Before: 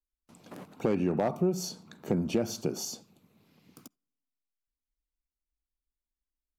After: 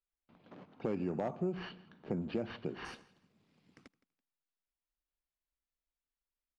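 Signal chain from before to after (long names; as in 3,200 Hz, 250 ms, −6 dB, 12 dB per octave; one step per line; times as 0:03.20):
repeating echo 166 ms, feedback 25%, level −21 dB
bad sample-rate conversion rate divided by 6×, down none, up hold
low-pass filter 3,800 Hz 24 dB per octave, from 0:02.85 8,100 Hz
level −8 dB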